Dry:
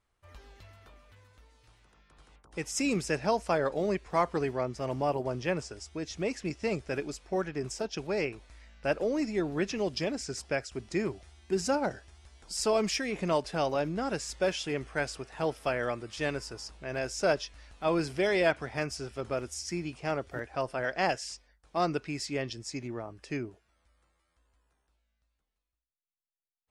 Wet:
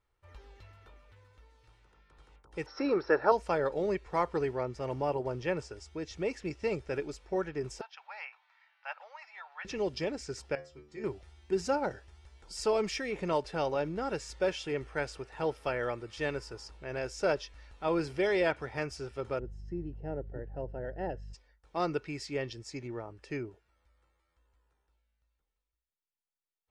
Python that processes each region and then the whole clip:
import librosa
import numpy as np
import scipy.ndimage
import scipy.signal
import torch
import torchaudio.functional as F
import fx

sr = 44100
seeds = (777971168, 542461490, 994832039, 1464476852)

y = fx.chain(x, sr, fx.cheby_ripple(hz=5700.0, ripple_db=9),
    fx.band_shelf(hz=650.0, db=14.0, octaves=2.8), at=(2.66, 3.32))
y = fx.chain(y, sr, fx.steep_highpass(hz=770.0, slope=48),
    fx.air_absorb(metres=240.0), at=(7.81, 9.65))
y = fx.chain(y, sr, fx.lowpass(hz=8100.0, slope=12),
    fx.stiff_resonator(f0_hz=72.0, decay_s=0.44, stiffness=0.002), at=(10.55, 11.04))
y = fx.dmg_buzz(y, sr, base_hz=50.0, harmonics=4, level_db=-44.0, tilt_db=-8, odd_only=False, at=(19.38, 21.33), fade=0.02)
y = fx.moving_average(y, sr, points=38, at=(19.38, 21.33), fade=0.02)
y = fx.high_shelf(y, sr, hz=6200.0, db=-11.0)
y = y + 0.35 * np.pad(y, (int(2.2 * sr / 1000.0), 0))[:len(y)]
y = F.gain(torch.from_numpy(y), -2.0).numpy()